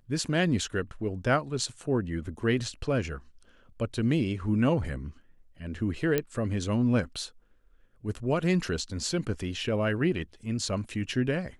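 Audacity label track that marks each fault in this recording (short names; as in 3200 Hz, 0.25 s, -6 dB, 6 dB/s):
6.180000	6.180000	pop -12 dBFS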